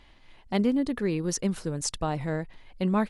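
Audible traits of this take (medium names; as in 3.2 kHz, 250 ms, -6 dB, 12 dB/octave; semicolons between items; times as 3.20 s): AC-3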